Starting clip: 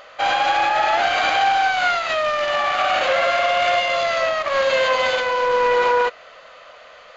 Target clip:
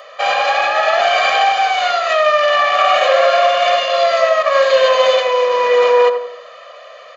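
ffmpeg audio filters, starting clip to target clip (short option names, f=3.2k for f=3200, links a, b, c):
-filter_complex "[0:a]aecho=1:1:1.7:0.95,acrossover=split=190|400|3500[a][b][c][d];[a]acrusher=bits=3:mix=0:aa=0.000001[e];[e][b][c][d]amix=inputs=4:normalize=0,asplit=2[f][g];[g]adelay=86,lowpass=f=1.2k:p=1,volume=-5.5dB,asplit=2[h][i];[i]adelay=86,lowpass=f=1.2k:p=1,volume=0.47,asplit=2[j][k];[k]adelay=86,lowpass=f=1.2k:p=1,volume=0.47,asplit=2[l][m];[m]adelay=86,lowpass=f=1.2k:p=1,volume=0.47,asplit=2[n][o];[o]adelay=86,lowpass=f=1.2k:p=1,volume=0.47,asplit=2[p][q];[q]adelay=86,lowpass=f=1.2k:p=1,volume=0.47[r];[f][h][j][l][n][p][r]amix=inputs=7:normalize=0,volume=1.5dB"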